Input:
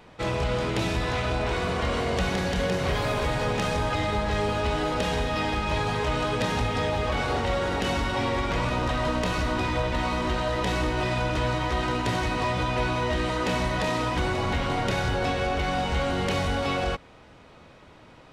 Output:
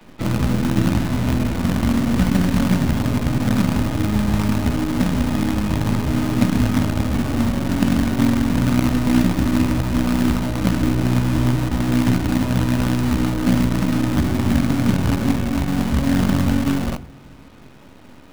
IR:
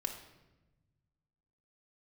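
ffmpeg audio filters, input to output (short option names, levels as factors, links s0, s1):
-filter_complex "[0:a]highpass=79,lowshelf=f=330:t=q:w=3:g=8.5,acrossover=split=430[s0][s1];[s0]acrusher=bits=5:dc=4:mix=0:aa=0.000001[s2];[s1]acompressor=threshold=0.01:ratio=6[s3];[s2][s3]amix=inputs=2:normalize=0,aeval=exprs='0.422*(cos(1*acos(clip(val(0)/0.422,-1,1)))-cos(1*PI/2))+0.0596*(cos(3*acos(clip(val(0)/0.422,-1,1)))-cos(3*PI/2))+0.0133*(cos(6*acos(clip(val(0)/0.422,-1,1)))-cos(6*PI/2))':c=same,asplit=2[s4][s5];[1:a]atrim=start_sample=2205[s6];[s5][s6]afir=irnorm=-1:irlink=0,volume=0.422[s7];[s4][s7]amix=inputs=2:normalize=0,volume=1.41"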